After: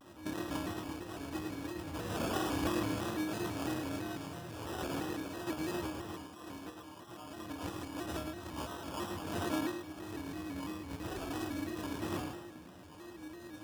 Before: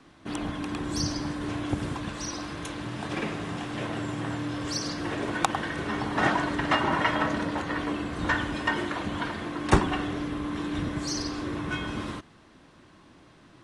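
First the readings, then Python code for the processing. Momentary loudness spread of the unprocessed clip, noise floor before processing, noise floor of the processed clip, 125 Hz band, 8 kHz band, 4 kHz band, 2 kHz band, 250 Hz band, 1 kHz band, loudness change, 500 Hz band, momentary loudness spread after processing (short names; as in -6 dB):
9 LU, -55 dBFS, -52 dBFS, -10.5 dB, -9.5 dB, -10.5 dB, -14.5 dB, -8.0 dB, -12.0 dB, -10.0 dB, -7.5 dB, 13 LU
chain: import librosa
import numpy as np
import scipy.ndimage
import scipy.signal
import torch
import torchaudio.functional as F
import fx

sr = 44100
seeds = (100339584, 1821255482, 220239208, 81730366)

y = fx.low_shelf(x, sr, hz=160.0, db=4.0)
y = fx.over_compress(y, sr, threshold_db=-34.0, ratio=-0.5)
y = fx.high_shelf(y, sr, hz=5000.0, db=11.0)
y = fx.comb_fb(y, sr, f0_hz=330.0, decay_s=0.48, harmonics='all', damping=0.0, mix_pct=90)
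y = fx.chorus_voices(y, sr, voices=4, hz=0.27, base_ms=11, depth_ms=1.6, mix_pct=40)
y = fx.sample_hold(y, sr, seeds[0], rate_hz=2100.0, jitter_pct=0)
y = scipy.signal.sosfilt(scipy.signal.butter(2, 61.0, 'highpass', fs=sr, output='sos'), y)
y = fx.echo_feedback(y, sr, ms=109, feedback_pct=37, wet_db=-5.5)
y = fx.vibrato_shape(y, sr, shape='square', rate_hz=3.0, depth_cents=100.0)
y = F.gain(torch.from_numpy(y), 11.0).numpy()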